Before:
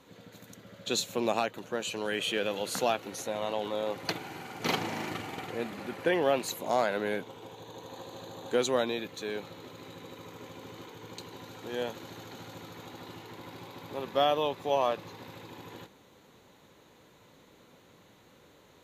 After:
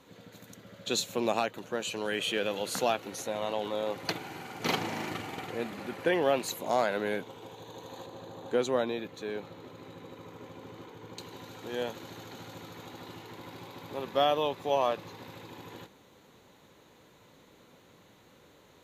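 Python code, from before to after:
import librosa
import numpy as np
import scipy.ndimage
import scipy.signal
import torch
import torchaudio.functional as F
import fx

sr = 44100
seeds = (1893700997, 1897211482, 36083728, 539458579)

y = fx.high_shelf(x, sr, hz=2400.0, db=-8.0, at=(8.06, 11.18))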